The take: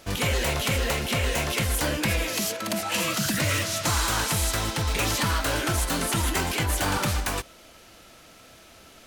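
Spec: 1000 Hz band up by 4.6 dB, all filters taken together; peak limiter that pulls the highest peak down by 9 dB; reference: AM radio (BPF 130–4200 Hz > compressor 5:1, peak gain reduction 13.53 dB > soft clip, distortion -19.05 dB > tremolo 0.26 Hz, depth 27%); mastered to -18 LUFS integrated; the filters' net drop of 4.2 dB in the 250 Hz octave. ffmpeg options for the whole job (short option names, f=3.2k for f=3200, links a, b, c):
-af "equalizer=f=250:t=o:g=-5.5,equalizer=f=1k:t=o:g=6,alimiter=limit=-21dB:level=0:latency=1,highpass=130,lowpass=4.2k,acompressor=threshold=-42dB:ratio=5,asoftclip=threshold=-37dB,tremolo=f=0.26:d=0.27,volume=28dB"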